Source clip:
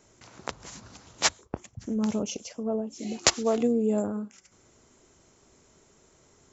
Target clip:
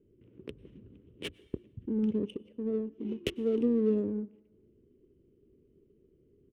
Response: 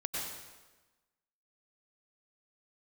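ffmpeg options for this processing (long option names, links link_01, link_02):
-filter_complex "[0:a]firequalizer=gain_entry='entry(170,0);entry(410,5);entry(740,-30);entry(3000,-1);entry(4500,-26)':delay=0.05:min_phase=1,adynamicsmooth=sensitivity=8:basefreq=1200,asplit=2[link_01][link_02];[1:a]atrim=start_sample=2205[link_03];[link_02][link_03]afir=irnorm=-1:irlink=0,volume=-25dB[link_04];[link_01][link_04]amix=inputs=2:normalize=0,volume=-3.5dB"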